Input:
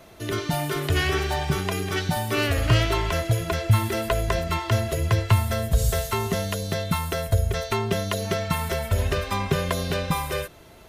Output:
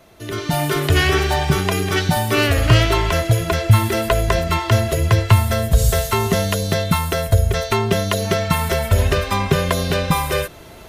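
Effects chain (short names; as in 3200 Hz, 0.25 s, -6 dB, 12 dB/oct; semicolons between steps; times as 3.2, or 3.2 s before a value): AGC gain up to 11 dB; gain -1 dB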